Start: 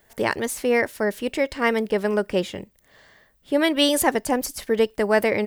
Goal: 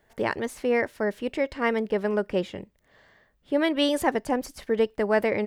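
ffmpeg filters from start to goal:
-af "lowpass=f=2.6k:p=1,volume=-3dB"

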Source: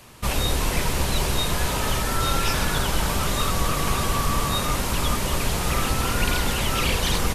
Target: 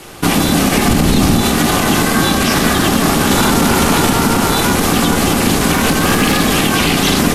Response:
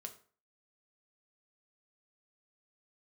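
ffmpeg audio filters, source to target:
-filter_complex "[0:a]asettb=1/sr,asplit=3[a][b][c];[a]atrim=end=3.304[d];[b]atrim=start=3.3:end=4.1,asetpts=PTS-STARTPTS,afade=t=in:d=0.004:c=qsin,afade=t=out:st=0.796:d=0.004:c=qsin,acontrast=75[e];[c]atrim=start=4.096[f];[d][e]acrossfade=d=0.004:c1=hsin:c2=qsin[g];[g][f]acrossfade=d=0.004:c1=qsin:c2=hsin[h];[1:a]atrim=start_sample=2205,asetrate=61740,aresample=44100[i];[h][i]afir=irnorm=-1:irlink=0,aeval=exprs='val(0)*sin(2*PI*230*n/s)':c=same,asettb=1/sr,asplit=3[j][k][l];[j]atrim=end=0.884[m];[k]atrim=start=0.88:end=1.41,asetpts=PTS-STARTPTS,afade=t=in:d=0.004:c=qsin,afade=t=out:st=0.526:d=0.004:c=qsin,lowshelf=f=180:g=11.5[n];[l]atrim=start=1.406[o];[m][n]acrossfade=d=0.004:c1=hsin:c2=qsin[p];[p][o]acrossfade=d=0.004:c1=qsin:c2=hsin,asettb=1/sr,asplit=3[q][r][s];[q]atrim=end=5.734[t];[r]atrim=start=5.73:end=6.4,asetpts=PTS-STARTPTS,afade=t=in:d=0.004:c=qsin,afade=t=out:st=0.666:d=0.004:c=qsin,aeval=exprs='clip(val(0),-1,0.0398)':c=same[u];[s]atrim=start=6.396[v];[t][u]acrossfade=d=0.004:c1=hsin:c2=qsin[w];[w][v]acrossfade=d=0.004:c1=qsin:c2=hsin,alimiter=level_in=24.5dB:limit=-1dB:release=50:level=0:latency=1,volume=-1dB"

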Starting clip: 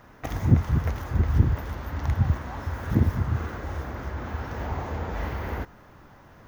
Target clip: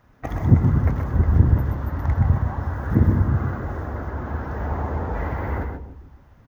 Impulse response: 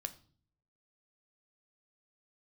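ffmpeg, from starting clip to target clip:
-filter_complex "[0:a]asplit=2[a][b];[b]adelay=156,lowpass=f=1.4k:p=1,volume=-8.5dB,asplit=2[c][d];[d]adelay=156,lowpass=f=1.4k:p=1,volume=0.48,asplit=2[e][f];[f]adelay=156,lowpass=f=1.4k:p=1,volume=0.48,asplit=2[g][h];[h]adelay=156,lowpass=f=1.4k:p=1,volume=0.48,asplit=2[i][j];[j]adelay=156,lowpass=f=1.4k:p=1,volume=0.48[k];[c][e][g][i][k]amix=inputs=5:normalize=0[l];[a][l]amix=inputs=2:normalize=0,afftdn=nr=12:nf=-39,asplit=2[m][n];[n]aecho=0:1:126:0.501[o];[m][o]amix=inputs=2:normalize=0,volume=3.5dB"

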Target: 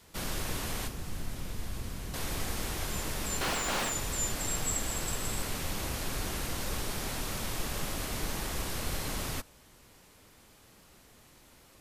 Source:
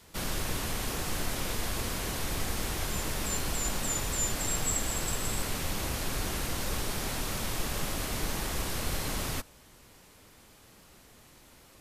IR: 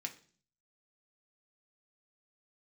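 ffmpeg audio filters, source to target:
-filter_complex "[0:a]asettb=1/sr,asplit=3[a][b][c];[a]atrim=end=0.874[d];[b]atrim=start=0.87:end=2.14,asetpts=PTS-STARTPTS,afade=t=in:d=0.004:c=qsin,afade=t=out:st=1.266:d=0.004:c=qsin,acrossover=split=240[e][f];[f]acompressor=threshold=-44dB:ratio=4[g];[e][g]amix=inputs=2:normalize=0[h];[c]atrim=start=2.136[i];[d][h]acrossfade=d=0.004:c1=hsin:c2=qsin[j];[j][i]acrossfade=d=0.004:c1=qsin:c2=hsin,asettb=1/sr,asplit=3[k][l][m];[k]atrim=end=3.414[n];[l]atrim=start=3.41:end=3.92,asetpts=PTS-STARTPTS,afade=t=in:d=0.004:c=qsin,afade=t=out:st=0.506:d=0.004:c=qsin,asplit=2[o][p];[p]highpass=f=720:p=1,volume=31dB,asoftclip=type=tanh:threshold=-18.5dB[q];[o][q]amix=inputs=2:normalize=0,lowpass=f=2.3k:p=1,volume=-6dB[r];[m]atrim=start=3.916[s];[n][r]acrossfade=d=0.004:c1=hsin:c2=qsin[t];[t][s]acrossfade=d=0.004:c1=qsin:c2=hsin,volume=-2dB"

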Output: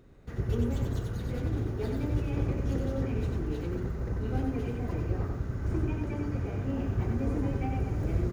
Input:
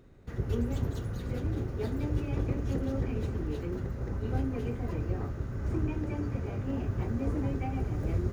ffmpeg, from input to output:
-af "aecho=1:1:93:0.596"

